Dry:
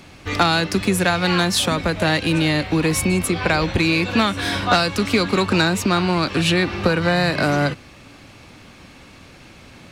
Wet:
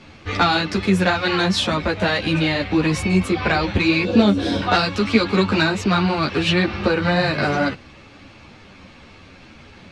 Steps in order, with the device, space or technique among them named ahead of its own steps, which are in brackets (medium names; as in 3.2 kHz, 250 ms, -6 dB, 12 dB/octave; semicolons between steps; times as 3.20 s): string-machine ensemble chorus (three-phase chorus; low-pass 5.1 kHz 12 dB/octave); 4.05–4.62 s: graphic EQ 250/500/1000/2000 Hz +6/+9/-6/-9 dB; trim +3 dB